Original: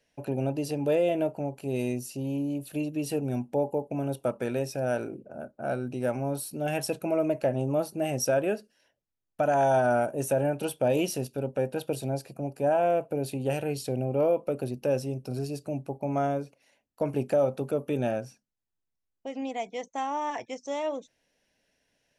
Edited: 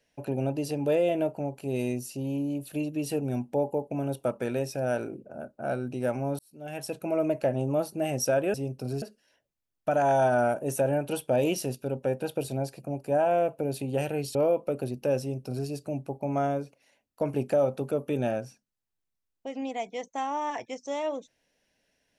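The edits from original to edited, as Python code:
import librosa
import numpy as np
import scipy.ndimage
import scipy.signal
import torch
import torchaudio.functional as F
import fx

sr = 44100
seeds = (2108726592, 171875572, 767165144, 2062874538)

y = fx.edit(x, sr, fx.fade_in_span(start_s=6.39, length_s=0.84),
    fx.cut(start_s=13.87, length_s=0.28),
    fx.duplicate(start_s=15.0, length_s=0.48, to_s=8.54), tone=tone)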